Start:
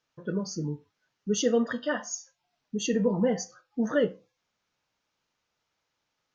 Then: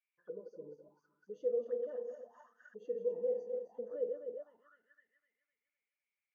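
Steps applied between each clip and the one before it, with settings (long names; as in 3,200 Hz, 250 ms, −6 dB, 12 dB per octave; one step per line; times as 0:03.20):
feedback delay that plays each chunk backwards 127 ms, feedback 71%, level −8.5 dB
brickwall limiter −19.5 dBFS, peak gain reduction 6 dB
envelope filter 490–2,300 Hz, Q 14, down, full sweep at −29.5 dBFS
level −1 dB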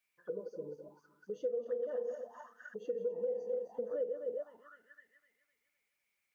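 downward compressor 10 to 1, threshold −38 dBFS, peak gain reduction 10 dB
dynamic equaliser 330 Hz, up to −4 dB, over −53 dBFS, Q 0.71
level +9 dB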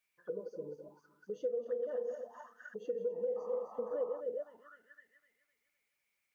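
sound drawn into the spectrogram noise, 0:03.36–0:04.21, 500–1,300 Hz −53 dBFS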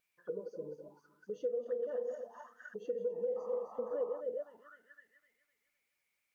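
tape wow and flutter 26 cents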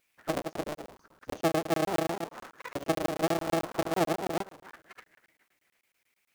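sub-harmonics by changed cycles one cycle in 3, inverted
regular buffer underruns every 0.11 s, samples 1,024, zero, from 0:00.42
level +8.5 dB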